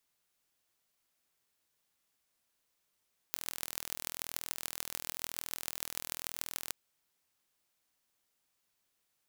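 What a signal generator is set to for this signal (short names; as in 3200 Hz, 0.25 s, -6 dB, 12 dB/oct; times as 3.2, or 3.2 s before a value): pulse train 41/s, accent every 6, -7 dBFS 3.39 s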